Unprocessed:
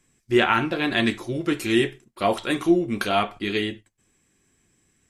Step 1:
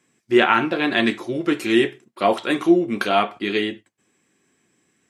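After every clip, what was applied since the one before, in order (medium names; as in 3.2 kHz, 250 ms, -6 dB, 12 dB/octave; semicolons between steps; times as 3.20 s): high-pass 200 Hz 12 dB/octave; treble shelf 5.3 kHz -8.5 dB; trim +4 dB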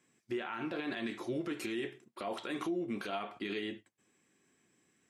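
compression 3:1, threshold -23 dBFS, peak gain reduction 10.5 dB; peak limiter -21 dBFS, peak gain reduction 11.5 dB; trim -7 dB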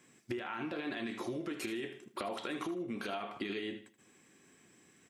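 compression 10:1, threshold -44 dBFS, peak gain reduction 13 dB; feedback delay 78 ms, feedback 30%, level -12.5 dB; trim +8.5 dB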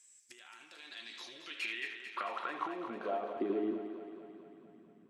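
band-pass sweep 7.6 kHz -> 220 Hz, 0.66–4.00 s; thinning echo 222 ms, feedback 66%, high-pass 190 Hz, level -9 dB; trim +8.5 dB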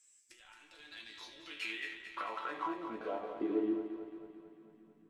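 chord resonator A2 sus4, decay 0.25 s; in parallel at -9.5 dB: hysteresis with a dead band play -52.5 dBFS; on the sum: trim +9 dB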